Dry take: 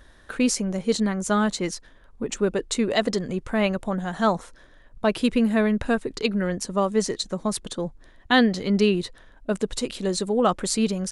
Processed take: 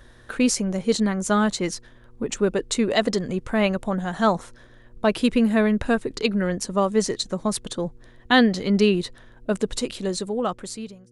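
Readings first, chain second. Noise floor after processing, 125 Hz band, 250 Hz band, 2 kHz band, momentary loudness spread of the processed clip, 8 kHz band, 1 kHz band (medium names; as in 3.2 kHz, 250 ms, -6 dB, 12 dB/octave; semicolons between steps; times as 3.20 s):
-50 dBFS, +1.0 dB, +1.0 dB, +1.5 dB, 11 LU, +0.5 dB, +1.0 dB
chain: fade out at the end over 1.36 s; mains buzz 120 Hz, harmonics 4, -58 dBFS -4 dB/octave; trim +1.5 dB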